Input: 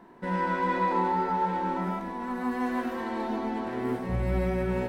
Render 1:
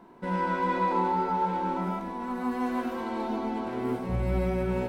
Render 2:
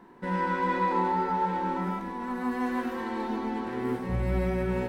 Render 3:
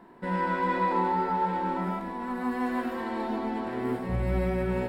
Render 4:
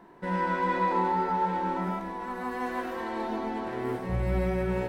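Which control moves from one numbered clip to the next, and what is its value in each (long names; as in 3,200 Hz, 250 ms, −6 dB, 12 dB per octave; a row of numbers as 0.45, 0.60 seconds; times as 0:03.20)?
notch filter, centre frequency: 1,800, 650, 6,100, 240 Hertz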